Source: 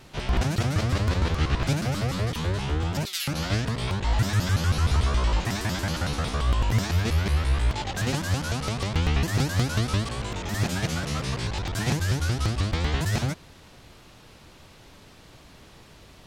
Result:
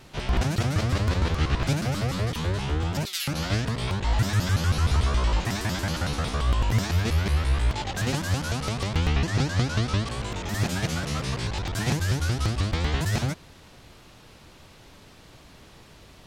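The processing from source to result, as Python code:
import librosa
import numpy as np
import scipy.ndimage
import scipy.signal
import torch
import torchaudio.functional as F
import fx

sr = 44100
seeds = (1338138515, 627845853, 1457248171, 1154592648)

y = fx.lowpass(x, sr, hz=6900.0, slope=12, at=(9.13, 10.08))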